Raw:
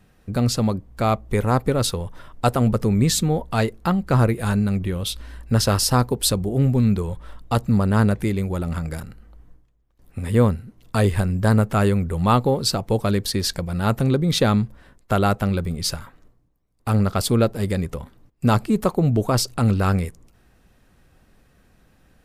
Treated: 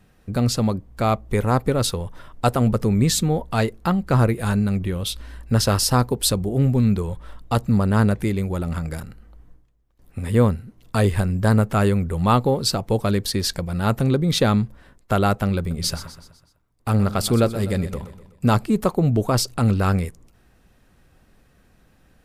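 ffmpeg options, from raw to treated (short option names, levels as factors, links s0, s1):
-filter_complex "[0:a]asettb=1/sr,asplit=3[s0][s1][s2];[s0]atrim=end=15.584[s3];[s1]atrim=start=15.58:end=18.48,asetpts=PTS-STARTPTS,afade=t=in:d=0.004:c=qsin,afade=t=out:st=2.896:d=0.004:c=qsin,aecho=1:1:125|250|375|500|625:0.211|0.101|0.0487|0.0234|0.0112,atrim=end_sample=127890[s4];[s2]atrim=start=18.476[s5];[s3][s4]acrossfade=d=0.004:c1=hsin:c2=qsin[s6];[s6][s5]acrossfade=d=0.004:c1=qsin:c2=hsin"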